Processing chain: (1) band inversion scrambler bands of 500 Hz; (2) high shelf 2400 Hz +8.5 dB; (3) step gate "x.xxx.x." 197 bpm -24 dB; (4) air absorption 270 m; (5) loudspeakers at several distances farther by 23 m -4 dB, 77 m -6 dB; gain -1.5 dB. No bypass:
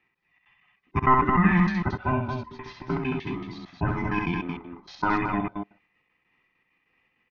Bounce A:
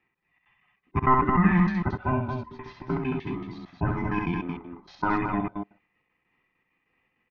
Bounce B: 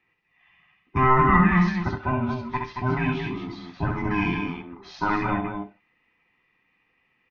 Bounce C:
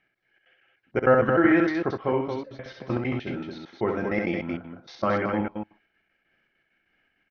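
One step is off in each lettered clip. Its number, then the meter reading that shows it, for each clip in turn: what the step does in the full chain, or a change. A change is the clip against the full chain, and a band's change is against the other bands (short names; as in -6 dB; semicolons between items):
2, 4 kHz band -5.5 dB; 3, momentary loudness spread change -2 LU; 1, 500 Hz band +9.0 dB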